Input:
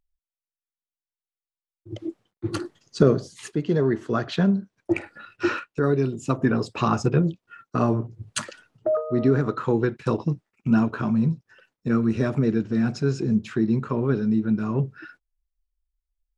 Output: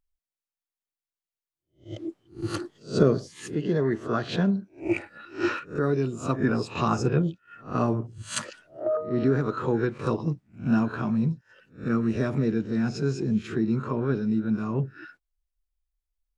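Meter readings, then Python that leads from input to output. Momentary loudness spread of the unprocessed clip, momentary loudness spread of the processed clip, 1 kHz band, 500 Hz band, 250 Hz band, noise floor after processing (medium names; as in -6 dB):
11 LU, 10 LU, -2.0 dB, -2.5 dB, -3.0 dB, under -85 dBFS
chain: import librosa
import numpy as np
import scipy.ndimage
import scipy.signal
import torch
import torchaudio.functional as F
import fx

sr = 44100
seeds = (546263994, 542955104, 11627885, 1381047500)

y = fx.spec_swells(x, sr, rise_s=0.31)
y = y * librosa.db_to_amplitude(-3.5)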